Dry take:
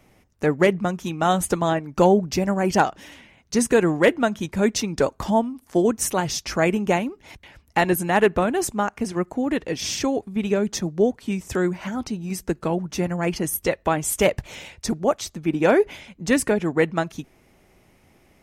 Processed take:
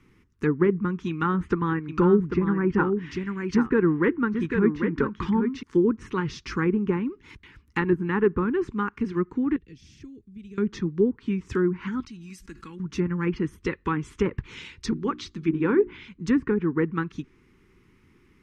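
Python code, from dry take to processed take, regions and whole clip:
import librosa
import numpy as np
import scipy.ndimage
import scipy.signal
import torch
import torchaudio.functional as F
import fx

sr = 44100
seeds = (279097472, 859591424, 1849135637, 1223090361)

y = fx.chain(x, sr, fx.peak_eq(hz=1800.0, db=4.5, octaves=1.1),
    fx.echo_single(ms=794, db=-7.0), at=(1.09, 5.63))
y = fx.chain(y, sr, fx.tone_stack(knobs='10-0-1'),
    fx.band_squash(depth_pct=70), at=(9.56, 10.58))
y = fx.chain(y, sr, fx.tone_stack(knobs='5-5-5'),
    fx.comb(ms=3.6, depth=0.38),
    fx.env_flatten(amount_pct=70), at=(12.0, 12.8))
y = fx.chain(y, sr, fx.peak_eq(hz=4000.0, db=5.5, octaves=1.3),
    fx.hum_notches(base_hz=60, count=6), at=(14.57, 16.09))
y = scipy.signal.sosfilt(scipy.signal.cheby1(2, 1.0, [390.0, 1100.0], 'bandstop', fs=sr, output='sos'), y)
y = fx.env_lowpass_down(y, sr, base_hz=1200.0, full_db=-18.5)
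y = fx.lowpass(y, sr, hz=2400.0, slope=6)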